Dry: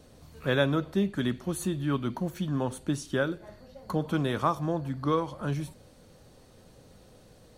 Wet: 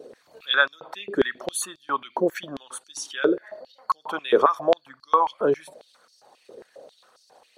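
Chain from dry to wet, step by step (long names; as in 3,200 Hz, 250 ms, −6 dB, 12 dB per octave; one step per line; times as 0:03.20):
spectral envelope exaggerated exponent 1.5
high-pass on a step sequencer 7.4 Hz 430–5,000 Hz
level +8.5 dB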